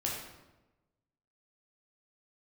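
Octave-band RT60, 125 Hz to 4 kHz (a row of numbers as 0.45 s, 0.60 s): 1.3 s, 1.2 s, 1.1 s, 1.0 s, 0.85 s, 0.70 s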